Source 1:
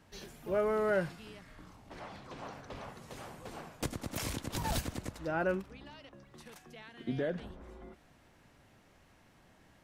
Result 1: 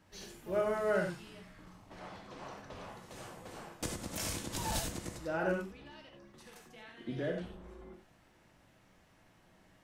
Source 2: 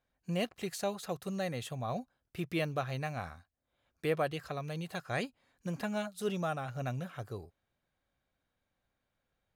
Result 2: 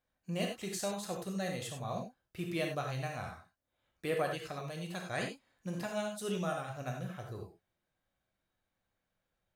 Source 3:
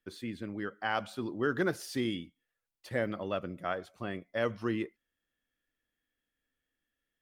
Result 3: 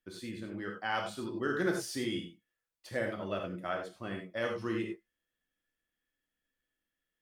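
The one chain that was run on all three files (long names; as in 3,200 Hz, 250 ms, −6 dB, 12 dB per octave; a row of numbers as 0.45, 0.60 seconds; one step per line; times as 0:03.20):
reverb whose tail is shaped and stops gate 120 ms flat, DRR 1 dB
dynamic equaliser 7,500 Hz, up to +6 dB, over −57 dBFS, Q 0.77
level −4 dB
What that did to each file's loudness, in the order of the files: −1.5, −1.0, −1.0 LU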